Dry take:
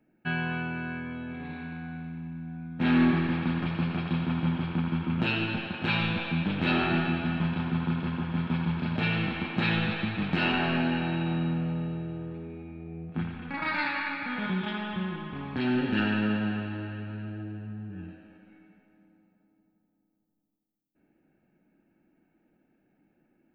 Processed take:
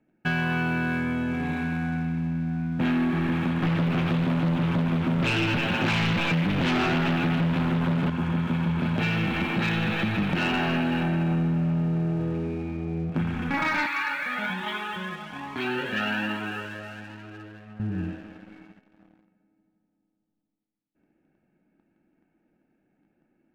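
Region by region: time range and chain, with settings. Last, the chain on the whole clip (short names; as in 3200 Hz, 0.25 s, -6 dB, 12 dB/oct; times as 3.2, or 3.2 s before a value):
3.63–8.1 sample leveller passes 3 + flange 1.1 Hz, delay 6.6 ms, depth 1.4 ms, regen -38% + Doppler distortion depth 0.27 ms
11.03–12.2 air absorption 200 m + comb 5.1 ms, depth 44%
13.86–17.8 HPF 600 Hz 6 dB/oct + cascading flanger rising 1.2 Hz
whole clip: LPF 3800 Hz; compressor, threshold -31 dBFS; sample leveller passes 2; gain +3 dB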